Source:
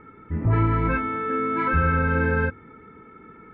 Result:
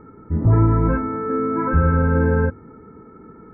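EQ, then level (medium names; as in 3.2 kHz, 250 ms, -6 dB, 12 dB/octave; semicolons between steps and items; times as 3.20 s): Gaussian low-pass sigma 6.6 samples; +6.0 dB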